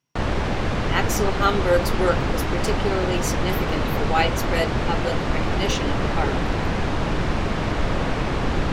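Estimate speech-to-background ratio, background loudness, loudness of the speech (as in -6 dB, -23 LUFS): -2.0 dB, -24.5 LUFS, -26.5 LUFS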